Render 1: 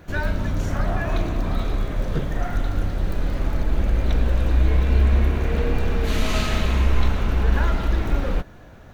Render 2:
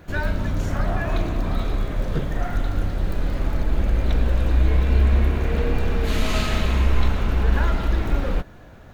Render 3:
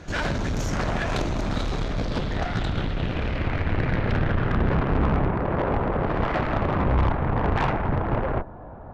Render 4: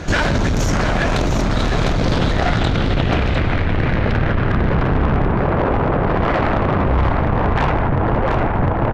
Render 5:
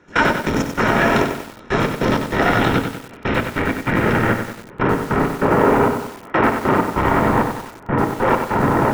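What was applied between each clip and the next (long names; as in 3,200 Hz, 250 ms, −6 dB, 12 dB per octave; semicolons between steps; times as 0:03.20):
notch filter 5,900 Hz, Q 24
low-pass filter sweep 6,200 Hz → 910 Hz, 0:01.62–0:05.40; harmonic generator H 7 −9 dB, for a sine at −5.5 dBFS; soft clipping −16.5 dBFS, distortion −8 dB
single-tap delay 703 ms −7 dB; in parallel at +1 dB: compressor whose output falls as the input rises −28 dBFS, ratio −0.5; on the sum: level +3.5 dB
gate pattern ".x.x.xxx.." 97 BPM −24 dB; convolution reverb RT60 0.25 s, pre-delay 3 ms, DRR 8 dB; feedback echo at a low word length 94 ms, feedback 55%, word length 5 bits, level −6.5 dB; level −2.5 dB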